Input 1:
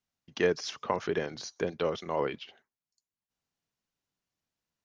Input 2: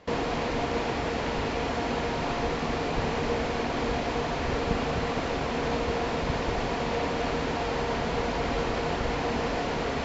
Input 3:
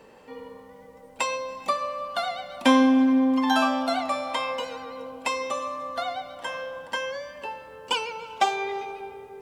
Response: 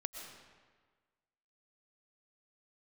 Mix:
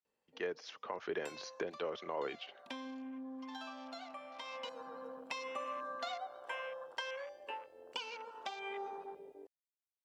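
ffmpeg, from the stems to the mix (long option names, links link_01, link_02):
-filter_complex "[0:a]dynaudnorm=framelen=180:gausssize=11:maxgain=16.5dB,acrossover=split=290 4200:gain=0.2 1 0.251[link_01][link_02][link_03];[link_01][link_02][link_03]amix=inputs=3:normalize=0,volume=-11dB[link_04];[2:a]highshelf=frequency=2500:gain=9.5,afwtdn=0.02,acompressor=threshold=-25dB:ratio=4,adelay=50,volume=-10dB,afade=type=in:start_time=4.39:duration=0.57:silence=0.334965[link_05];[link_04][link_05]amix=inputs=2:normalize=0,alimiter=level_in=3.5dB:limit=-24dB:level=0:latency=1:release=436,volume=-3.5dB"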